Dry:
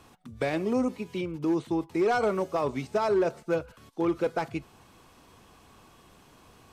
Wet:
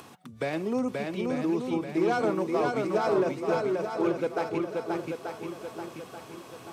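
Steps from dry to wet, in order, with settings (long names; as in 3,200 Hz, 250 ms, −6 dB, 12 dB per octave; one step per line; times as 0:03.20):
high-pass filter 110 Hz 24 dB per octave
upward compression, threshold −39 dBFS
on a send: feedback echo with a long and a short gap by turns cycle 884 ms, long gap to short 1.5 to 1, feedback 42%, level −3 dB
on the sum: level −2 dB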